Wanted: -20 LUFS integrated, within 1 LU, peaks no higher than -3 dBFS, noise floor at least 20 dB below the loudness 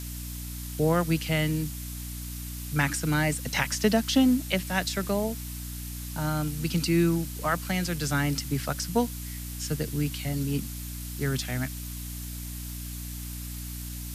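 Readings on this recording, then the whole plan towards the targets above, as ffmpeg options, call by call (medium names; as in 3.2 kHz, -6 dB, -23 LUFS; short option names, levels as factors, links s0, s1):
hum 60 Hz; highest harmonic 300 Hz; hum level -35 dBFS; noise floor -37 dBFS; noise floor target -49 dBFS; loudness -29.0 LUFS; peak level -9.5 dBFS; loudness target -20.0 LUFS
-> -af "bandreject=f=60:t=h:w=4,bandreject=f=120:t=h:w=4,bandreject=f=180:t=h:w=4,bandreject=f=240:t=h:w=4,bandreject=f=300:t=h:w=4"
-af "afftdn=nr=12:nf=-37"
-af "volume=2.82,alimiter=limit=0.708:level=0:latency=1"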